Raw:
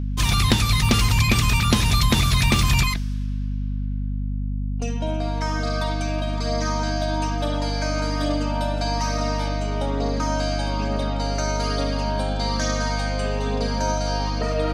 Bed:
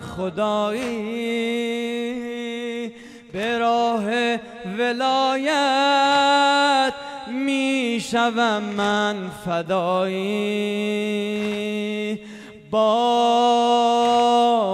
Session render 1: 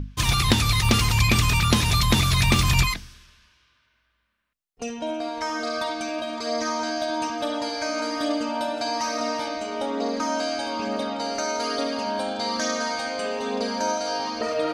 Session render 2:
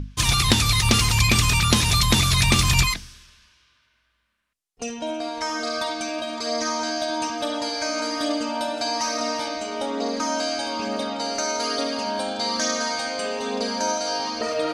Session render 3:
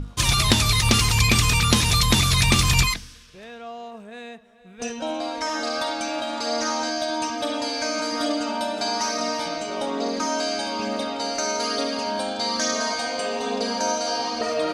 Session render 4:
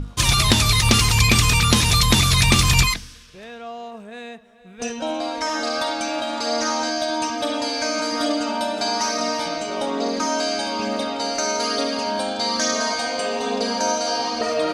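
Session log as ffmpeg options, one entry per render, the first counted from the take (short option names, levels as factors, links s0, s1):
-af "bandreject=f=50:t=h:w=6,bandreject=f=100:t=h:w=6,bandreject=f=150:t=h:w=6,bandreject=f=200:t=h:w=6,bandreject=f=250:t=h:w=6"
-af "lowpass=11000,highshelf=f=4500:g=8"
-filter_complex "[1:a]volume=0.133[s0];[0:a][s0]amix=inputs=2:normalize=0"
-af "volume=1.33,alimiter=limit=0.891:level=0:latency=1"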